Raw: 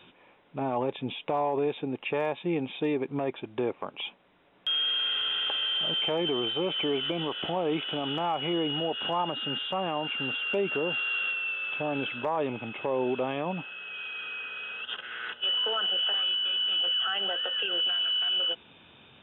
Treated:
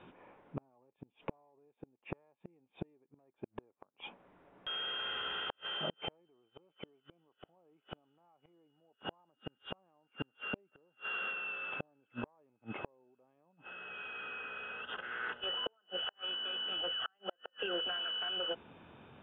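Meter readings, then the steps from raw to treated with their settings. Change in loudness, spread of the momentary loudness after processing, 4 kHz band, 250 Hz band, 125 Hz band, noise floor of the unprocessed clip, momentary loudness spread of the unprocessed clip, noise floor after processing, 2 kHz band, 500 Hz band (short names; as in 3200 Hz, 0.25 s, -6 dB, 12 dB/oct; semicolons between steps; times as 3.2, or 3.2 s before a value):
-11.5 dB, 19 LU, -12.5 dB, -16.5 dB, -13.0 dB, -59 dBFS, 10 LU, -82 dBFS, -9.0 dB, -16.0 dB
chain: LPF 1500 Hz 12 dB/oct; flipped gate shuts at -26 dBFS, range -41 dB; gain +1.5 dB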